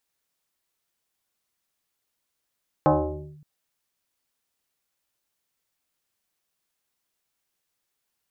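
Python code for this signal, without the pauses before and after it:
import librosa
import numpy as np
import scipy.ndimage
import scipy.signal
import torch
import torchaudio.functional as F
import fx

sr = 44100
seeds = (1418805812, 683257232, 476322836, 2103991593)

y = fx.fm2(sr, length_s=0.57, level_db=-13, carrier_hz=150.0, ratio=1.52, index=3.9, index_s=0.52, decay_s=0.96, shape='linear')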